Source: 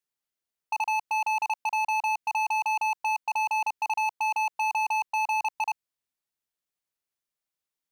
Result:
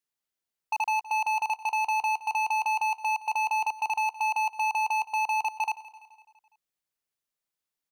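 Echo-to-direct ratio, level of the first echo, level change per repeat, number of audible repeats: -16.0 dB, -17.5 dB, -5.0 dB, 4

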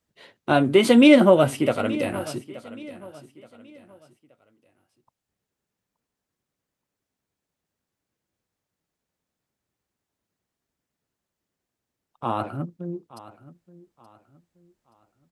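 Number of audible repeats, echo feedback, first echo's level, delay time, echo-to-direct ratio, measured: 2, 34%, -18.0 dB, 875 ms, -17.5 dB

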